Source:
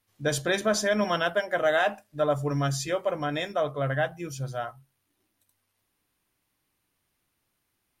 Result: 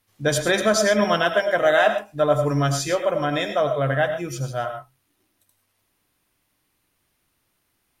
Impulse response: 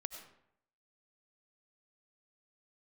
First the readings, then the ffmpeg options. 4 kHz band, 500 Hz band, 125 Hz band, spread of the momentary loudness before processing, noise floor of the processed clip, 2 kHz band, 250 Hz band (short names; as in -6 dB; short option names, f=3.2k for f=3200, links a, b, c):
+6.0 dB, +6.5 dB, +5.5 dB, 9 LU, -71 dBFS, +6.0 dB, +6.0 dB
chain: -filter_complex "[1:a]atrim=start_sample=2205,atrim=end_sample=6174[a];[0:a][a]afir=irnorm=-1:irlink=0,volume=8.5dB"